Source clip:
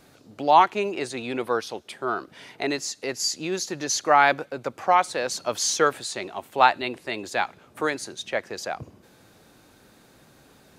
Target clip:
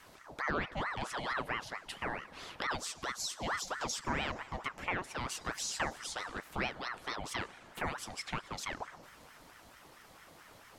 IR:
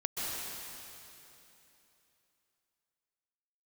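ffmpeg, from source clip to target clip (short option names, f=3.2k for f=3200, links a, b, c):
-filter_complex "[0:a]acrossover=split=230[a][b];[b]acompressor=threshold=-37dB:ratio=3[c];[a][c]amix=inputs=2:normalize=0,asplit=2[d][e];[1:a]atrim=start_sample=2205,asetrate=57330,aresample=44100[f];[e][f]afir=irnorm=-1:irlink=0,volume=-19dB[g];[d][g]amix=inputs=2:normalize=0,aeval=exprs='val(0)*sin(2*PI*1000*n/s+1000*0.65/4.5*sin(2*PI*4.5*n/s))':c=same"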